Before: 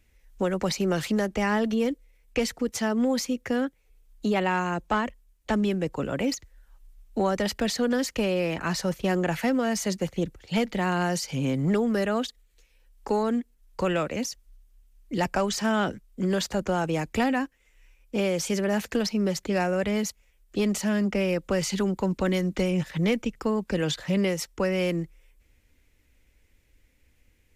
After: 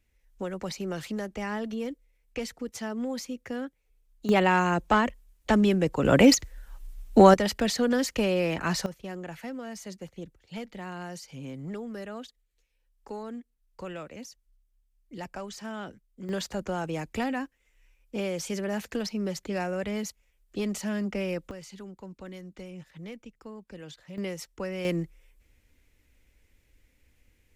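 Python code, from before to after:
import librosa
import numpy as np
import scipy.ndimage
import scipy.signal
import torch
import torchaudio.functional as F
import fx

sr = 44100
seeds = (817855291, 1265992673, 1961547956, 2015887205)

y = fx.gain(x, sr, db=fx.steps((0.0, -8.0), (4.29, 3.0), (6.05, 10.0), (7.34, 0.0), (8.86, -13.0), (16.29, -5.5), (21.51, -17.5), (24.18, -8.5), (24.85, -1.0)))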